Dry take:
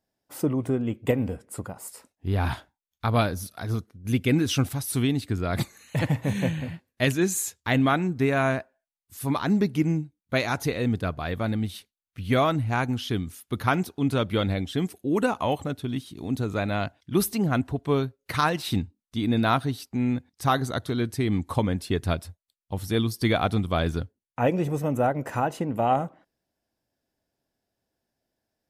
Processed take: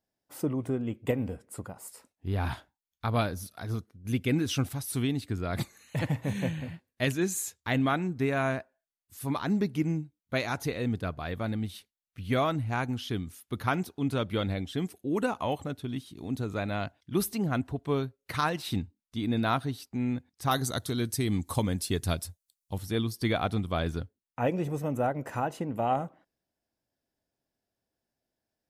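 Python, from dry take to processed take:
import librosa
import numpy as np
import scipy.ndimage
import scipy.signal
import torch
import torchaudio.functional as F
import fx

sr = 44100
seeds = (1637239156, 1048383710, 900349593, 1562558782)

y = fx.bass_treble(x, sr, bass_db=2, treble_db=13, at=(20.51, 22.78))
y = F.gain(torch.from_numpy(y), -5.0).numpy()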